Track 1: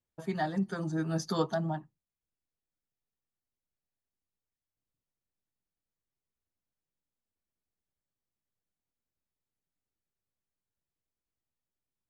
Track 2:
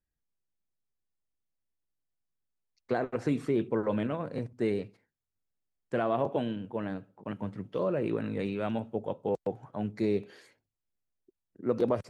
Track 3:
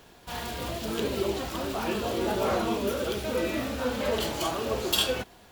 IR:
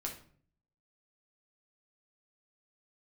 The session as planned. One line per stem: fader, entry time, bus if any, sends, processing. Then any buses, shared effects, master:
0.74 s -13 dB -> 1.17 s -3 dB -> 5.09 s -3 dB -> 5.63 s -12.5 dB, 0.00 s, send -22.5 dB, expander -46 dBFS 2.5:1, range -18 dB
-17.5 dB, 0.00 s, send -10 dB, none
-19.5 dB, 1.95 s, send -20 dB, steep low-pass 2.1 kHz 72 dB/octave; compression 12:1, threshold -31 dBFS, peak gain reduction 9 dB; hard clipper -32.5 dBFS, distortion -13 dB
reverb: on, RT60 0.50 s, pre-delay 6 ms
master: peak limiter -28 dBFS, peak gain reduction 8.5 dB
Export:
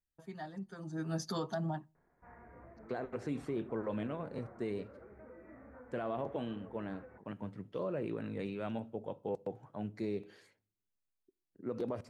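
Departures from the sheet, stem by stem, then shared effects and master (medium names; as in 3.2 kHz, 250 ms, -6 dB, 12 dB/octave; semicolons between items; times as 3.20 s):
stem 2 -17.5 dB -> -7.5 dB; stem 3: missing hard clipper -32.5 dBFS, distortion -13 dB; reverb return -7.5 dB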